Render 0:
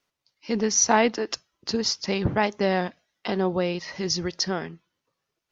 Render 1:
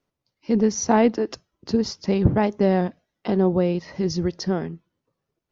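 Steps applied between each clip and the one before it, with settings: tilt shelf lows +8 dB, about 800 Hz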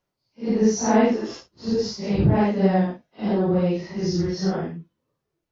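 phase scrambler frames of 0.2 s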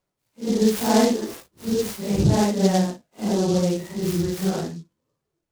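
noise-modulated delay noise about 4900 Hz, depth 0.064 ms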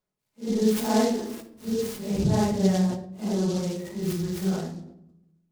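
shoebox room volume 2700 m³, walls furnished, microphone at 1.4 m; sustainer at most 94 dB/s; gain -7 dB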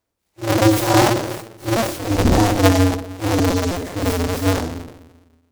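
cycle switcher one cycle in 2, inverted; gain +8 dB

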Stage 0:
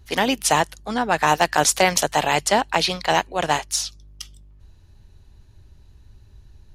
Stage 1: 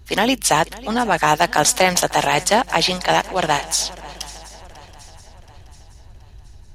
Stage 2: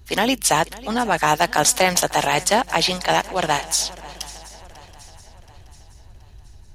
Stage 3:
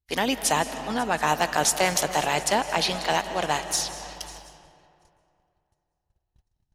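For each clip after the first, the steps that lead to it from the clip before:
in parallel at -3 dB: limiter -14.5 dBFS, peak gain reduction 11 dB; on the sum: swung echo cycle 0.726 s, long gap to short 3:1, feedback 44%, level -19.5 dB
high shelf 8300 Hz +4 dB; gain -2 dB
gate -38 dBFS, range -34 dB; digital reverb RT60 2.7 s, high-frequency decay 0.55×, pre-delay 0.12 s, DRR 10 dB; gain -5.5 dB

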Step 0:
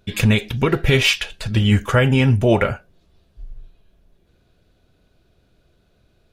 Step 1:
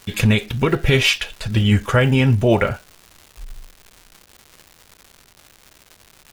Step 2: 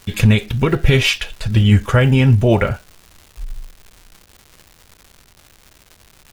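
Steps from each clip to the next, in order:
crackle 330/s -32 dBFS
low shelf 140 Hz +7.5 dB

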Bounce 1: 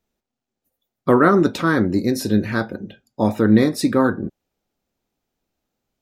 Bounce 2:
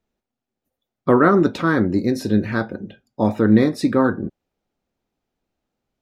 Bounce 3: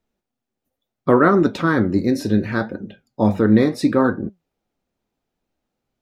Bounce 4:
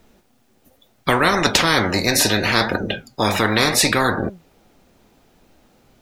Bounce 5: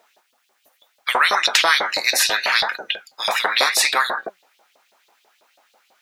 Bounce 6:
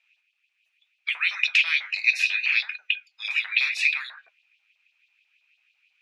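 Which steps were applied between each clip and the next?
LPF 3400 Hz 6 dB/oct
flange 0.72 Hz, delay 3.1 ms, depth 8.8 ms, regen +81%; gain +5 dB
spectral compressor 4:1
LFO high-pass saw up 6.1 Hz 560–4000 Hz; gain -1.5 dB
ladder band-pass 2600 Hz, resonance 85%

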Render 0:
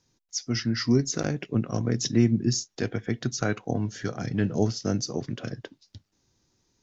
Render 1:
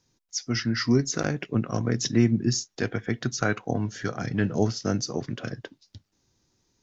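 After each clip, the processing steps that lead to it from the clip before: dynamic EQ 1400 Hz, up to +5 dB, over -45 dBFS, Q 0.8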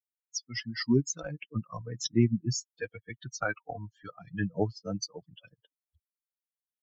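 per-bin expansion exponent 3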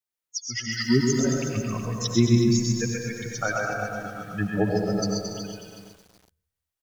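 bouncing-ball echo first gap 0.13 s, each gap 0.7×, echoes 5; digital reverb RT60 0.95 s, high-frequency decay 0.45×, pre-delay 60 ms, DRR 2.5 dB; lo-fi delay 0.37 s, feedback 35%, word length 8-bit, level -10 dB; gain +3.5 dB

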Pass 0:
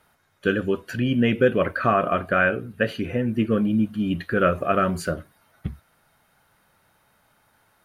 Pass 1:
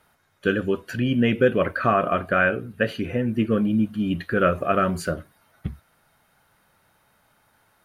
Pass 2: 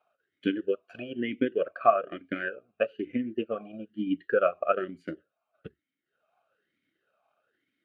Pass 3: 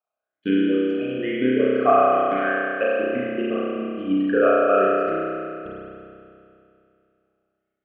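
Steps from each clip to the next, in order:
nothing audible
transient shaper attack +9 dB, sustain -10 dB; vowel sweep a-i 1.1 Hz
gate -47 dBFS, range -19 dB; spring tank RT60 2.6 s, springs 31 ms, chirp 40 ms, DRR -8 dB

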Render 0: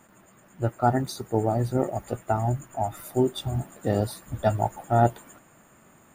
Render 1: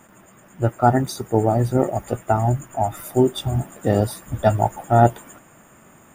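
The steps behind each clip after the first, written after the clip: notch 4200 Hz, Q 6; gain +6 dB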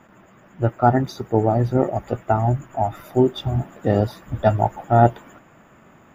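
running mean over 5 samples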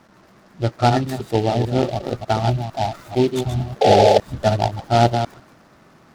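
reverse delay 0.15 s, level -6.5 dB; painted sound noise, 3.81–4.18, 380–870 Hz -11 dBFS; noise-modulated delay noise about 3100 Hz, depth 0.042 ms; gain -1 dB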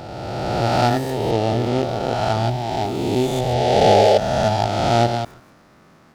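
spectral swells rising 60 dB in 2.29 s; gain -4 dB

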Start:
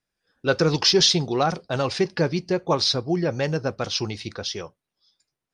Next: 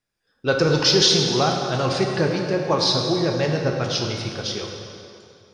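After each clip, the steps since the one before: plate-style reverb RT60 2.6 s, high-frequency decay 0.8×, pre-delay 0 ms, DRR 1 dB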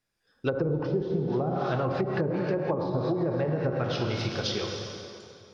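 treble ducked by the level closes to 510 Hz, closed at -15 dBFS; compressor, threshold -24 dBFS, peak gain reduction 9 dB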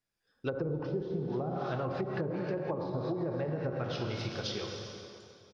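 echo 0.405 s -20.5 dB; gain -6.5 dB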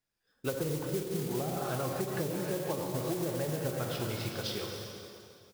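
modulation noise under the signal 11 dB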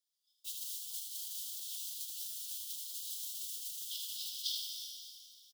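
steep high-pass 3000 Hz 96 dB/oct; echo 77 ms -5.5 dB; gain +1.5 dB

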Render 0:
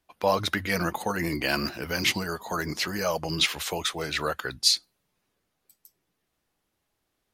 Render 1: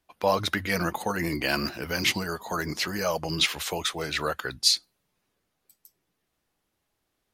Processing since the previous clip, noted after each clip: nothing audible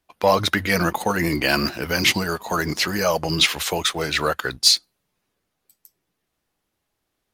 sample leveller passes 1; gain +3 dB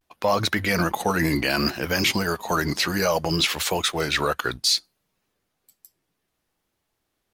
limiter -11.5 dBFS, peak gain reduction 8.5 dB; vibrato 0.63 Hz 74 cents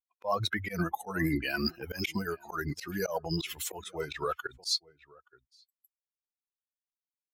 per-bin expansion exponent 2; outdoor echo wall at 150 m, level -24 dB; auto swell 0.103 s; gain -3.5 dB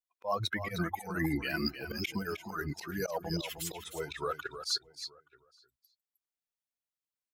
echo 0.309 s -10 dB; gain -2.5 dB

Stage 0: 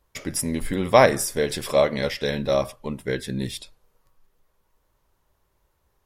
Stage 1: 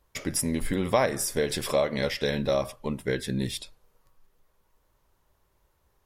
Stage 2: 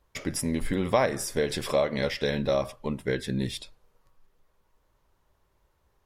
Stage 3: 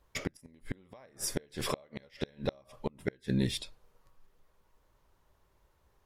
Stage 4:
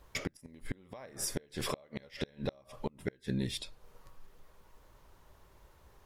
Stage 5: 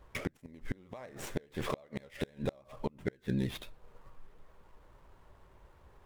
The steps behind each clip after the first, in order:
compressor 2.5:1, threshold -23 dBFS, peak gain reduction 9.5 dB
high shelf 8000 Hz -8 dB
flipped gate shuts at -18 dBFS, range -32 dB
compressor 2:1, threshold -51 dBFS, peak gain reduction 14.5 dB; gain +9 dB
median filter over 9 samples; vibrato 9.6 Hz 57 cents; gain +1.5 dB

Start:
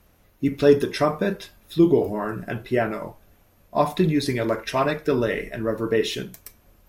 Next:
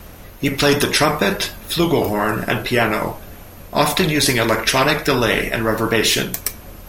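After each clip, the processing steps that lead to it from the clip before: vibrato 6.8 Hz 35 cents; spectral compressor 2:1; gain +3 dB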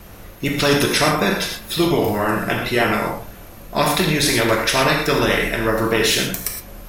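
non-linear reverb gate 0.14 s flat, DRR 1.5 dB; gain -3 dB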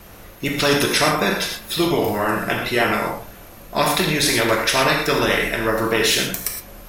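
low shelf 270 Hz -4.5 dB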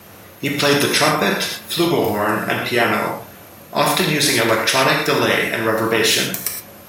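HPF 86 Hz 24 dB/oct; gain +2 dB

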